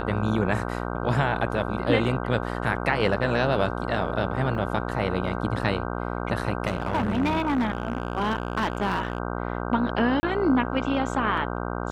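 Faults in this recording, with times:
buzz 60 Hz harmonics 26 -30 dBFS
4.55 gap 2.8 ms
6.67–9.18 clipped -19.5 dBFS
10.2–10.23 gap 30 ms

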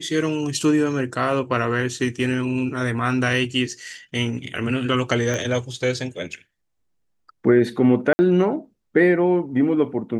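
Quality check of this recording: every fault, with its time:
5.34 pop -13 dBFS
8.13–8.19 gap 60 ms

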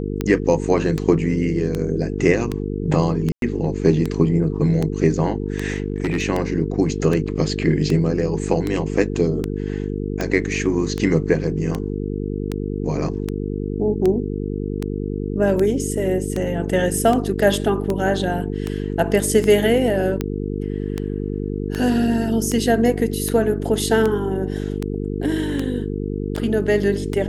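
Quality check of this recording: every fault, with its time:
buzz 50 Hz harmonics 9 -25 dBFS
tick 78 rpm -10 dBFS
3.32–3.42 gap 0.102 s
5.68–6.24 clipped -15.5 dBFS

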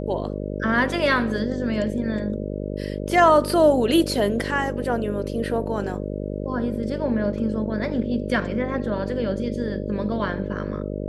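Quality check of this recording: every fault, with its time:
buzz 50 Hz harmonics 12 -29 dBFS

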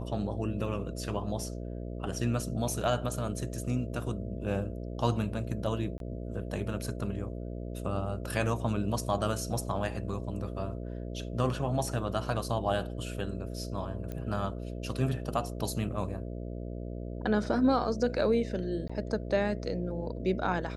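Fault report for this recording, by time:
buzz 60 Hz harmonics 11 -38 dBFS
5.98–6 gap 22 ms
14.12 pop -25 dBFS
18.88–18.89 gap 15 ms

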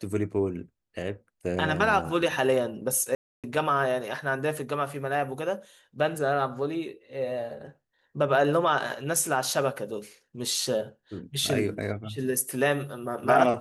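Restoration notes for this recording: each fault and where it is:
3.15–3.44 gap 0.287 s

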